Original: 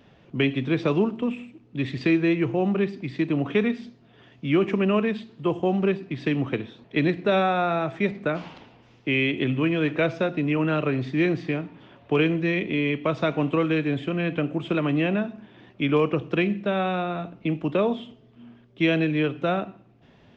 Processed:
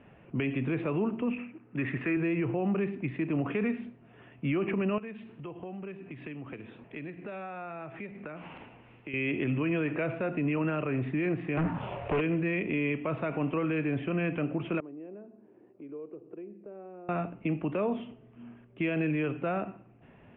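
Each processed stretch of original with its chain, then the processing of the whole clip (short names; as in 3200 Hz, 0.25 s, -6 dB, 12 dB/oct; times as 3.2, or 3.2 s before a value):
1.38–2.17 BPF 120–3100 Hz + bell 1500 Hz +8.5 dB 1.1 oct
4.98–9.14 high shelf 3800 Hz +8.5 dB + compressor 4:1, threshold -40 dBFS
11.57–12.21 envelope phaser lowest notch 220 Hz, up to 1800 Hz, full sweep at -22 dBFS + compressor 5:1, threshold -33 dBFS + sample leveller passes 5
14.8–17.09 band-pass 390 Hz, Q 2.6 + compressor 2:1, threshold -52 dBFS
whole clip: elliptic low-pass 2700 Hz, stop band 60 dB; limiter -22 dBFS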